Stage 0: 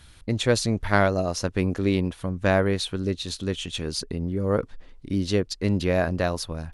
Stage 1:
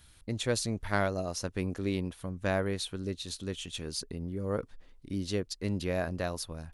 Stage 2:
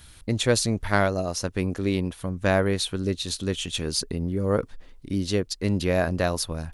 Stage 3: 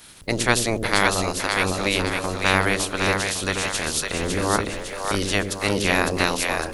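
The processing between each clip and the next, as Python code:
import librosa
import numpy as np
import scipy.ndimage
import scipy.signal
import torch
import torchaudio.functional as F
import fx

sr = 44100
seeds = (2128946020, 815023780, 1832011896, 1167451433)

y1 = fx.high_shelf(x, sr, hz=8400.0, db=10.5)
y1 = y1 * 10.0 ** (-9.0 / 20.0)
y2 = fx.rider(y1, sr, range_db=10, speed_s=2.0)
y2 = y2 * 10.0 ** (7.5 / 20.0)
y3 = fx.spec_clip(y2, sr, under_db=22)
y3 = fx.echo_split(y3, sr, split_hz=470.0, low_ms=84, high_ms=556, feedback_pct=52, wet_db=-4)
y3 = y3 * 10.0 ** (1.5 / 20.0)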